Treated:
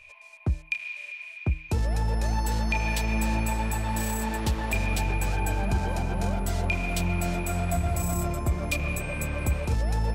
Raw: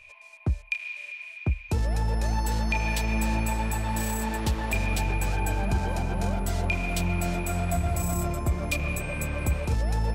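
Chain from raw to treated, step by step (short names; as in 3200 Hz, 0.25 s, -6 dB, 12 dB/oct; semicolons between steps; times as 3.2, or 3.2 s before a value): de-hum 156.2 Hz, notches 2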